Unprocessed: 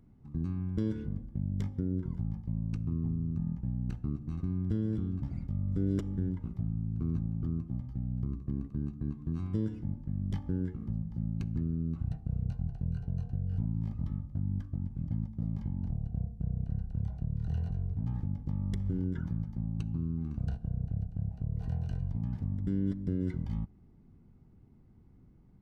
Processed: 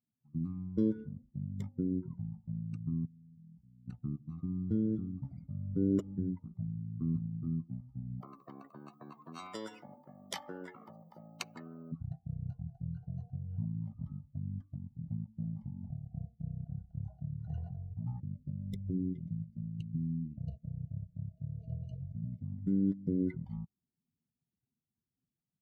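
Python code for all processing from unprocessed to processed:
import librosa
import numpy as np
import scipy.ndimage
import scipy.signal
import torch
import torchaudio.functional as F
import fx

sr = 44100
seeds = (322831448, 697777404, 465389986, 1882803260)

y = fx.chain(x, sr, fx.gaussian_blur(sigma=8.7),
    fx.level_steps(step_db=22), at=(3.05, 3.88))
y = fx.chain(y, sr, fx.highpass(hz=170.0, slope=12),
    fx.spectral_comp(ratio=2.0), at=(8.2, 11.92))
y = fx.chain(y, sr, fx.self_delay(depth_ms=0.099),
    fx.brickwall_bandstop(low_hz=690.0, high_hz=2000.0), at=(18.2, 22.45))
y = fx.bin_expand(y, sr, power=2.0)
y = scipy.signal.sosfilt(scipy.signal.butter(2, 150.0, 'highpass', fs=sr, output='sos'), y)
y = fx.notch(y, sr, hz=1600.0, q=7.0)
y = y * 10.0 ** (5.5 / 20.0)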